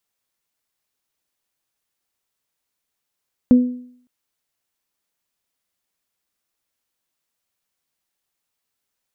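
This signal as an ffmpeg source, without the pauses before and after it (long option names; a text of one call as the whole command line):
ffmpeg -f lavfi -i "aevalsrc='0.562*pow(10,-3*t/0.6)*sin(2*PI*248*t)+0.1*pow(10,-3*t/0.48)*sin(2*PI*496*t)':duration=0.56:sample_rate=44100" out.wav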